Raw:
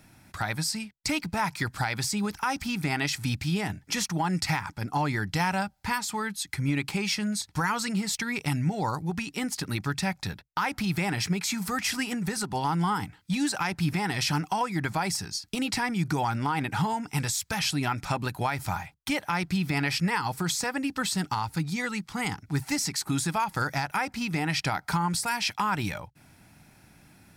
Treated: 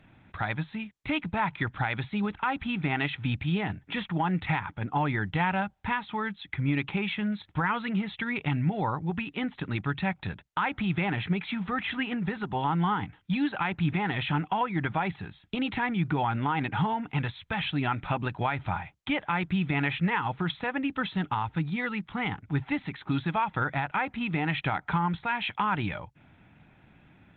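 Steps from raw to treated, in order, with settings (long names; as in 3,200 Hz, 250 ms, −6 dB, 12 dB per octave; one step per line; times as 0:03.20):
downsampling to 8,000 Hz
Opus 20 kbit/s 48,000 Hz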